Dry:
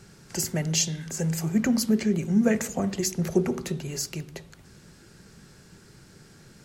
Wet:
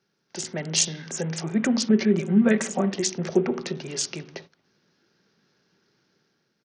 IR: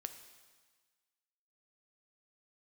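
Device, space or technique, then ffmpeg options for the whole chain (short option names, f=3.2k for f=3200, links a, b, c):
Bluetooth headset: -filter_complex "[0:a]agate=range=-16dB:threshold=-44dB:ratio=16:detection=peak,asettb=1/sr,asplit=3[a][b][c];[a]atrim=end=1.894[d];[b]atrim=start=1.89:end=2.91,asetpts=PTS-STARTPTS,afade=t=in:d=0.004:c=qsin,afade=t=out:st=1.016:d=0.004:c=qsin,aecho=1:1:5.2:0.67,atrim=end_sample=44982[e];[c]atrim=start=2.906[f];[d][e]acrossfade=d=0.004:c1=hsin:c2=qsin[g];[g][f]acrossfade=d=0.004:c1=qsin:c2=hsin,highpass=230,dynaudnorm=f=130:g=9:m=7dB,aresample=16000,aresample=44100,volume=-3.5dB" -ar 48000 -c:a sbc -b:a 64k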